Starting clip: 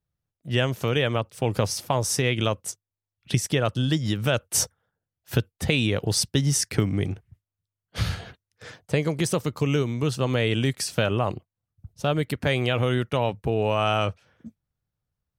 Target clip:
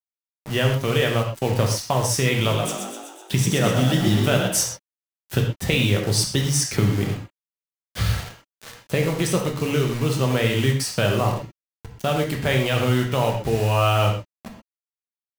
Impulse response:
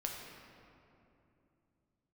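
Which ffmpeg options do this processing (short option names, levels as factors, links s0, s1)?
-filter_complex "[0:a]acrusher=bits=5:mix=0:aa=0.000001,asettb=1/sr,asplit=3[s0][s1][s2];[s0]atrim=end=2.324[s3];[s1]atrim=start=2.32:end=4.48,asetpts=PTS-STARTPTS,afade=t=in:d=0.004:c=qsin,afade=t=out:st=2.156:d=0.004:c=qsin,asplit=9[s4][s5][s6][s7][s8][s9][s10][s11][s12];[s5]adelay=125,afreqshift=44,volume=0.531[s13];[s6]adelay=250,afreqshift=88,volume=0.32[s14];[s7]adelay=375,afreqshift=132,volume=0.191[s15];[s8]adelay=500,afreqshift=176,volume=0.115[s16];[s9]adelay=625,afreqshift=220,volume=0.0692[s17];[s10]adelay=750,afreqshift=264,volume=0.0412[s18];[s11]adelay=875,afreqshift=308,volume=0.0248[s19];[s12]adelay=1000,afreqshift=352,volume=0.0148[s20];[s4][s13][s14][s15][s16][s17][s18][s19][s20]amix=inputs=9:normalize=0,atrim=end_sample=95256[s21];[s2]atrim=start=4.476[s22];[s3][s21]acrossfade=d=0.004:c1=hsin:c2=qsin[s23];[s23][s22]acrossfade=d=0.004:c1=qsin:c2=hsin[s24];[1:a]atrim=start_sample=2205,afade=t=out:st=0.22:d=0.01,atrim=end_sample=10143,asetrate=57330,aresample=44100[s25];[s24][s25]afir=irnorm=-1:irlink=0,volume=1.88"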